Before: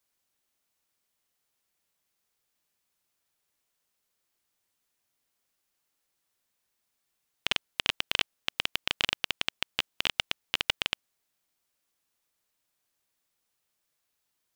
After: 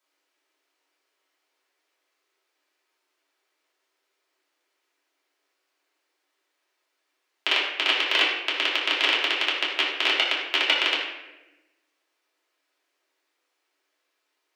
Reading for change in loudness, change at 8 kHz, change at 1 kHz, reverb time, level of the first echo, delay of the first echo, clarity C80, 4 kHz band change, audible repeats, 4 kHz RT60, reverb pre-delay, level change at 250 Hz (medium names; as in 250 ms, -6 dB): +8.0 dB, 0.0 dB, +9.5 dB, 1.0 s, no echo, no echo, 4.5 dB, +7.5 dB, no echo, 0.70 s, 3 ms, +8.0 dB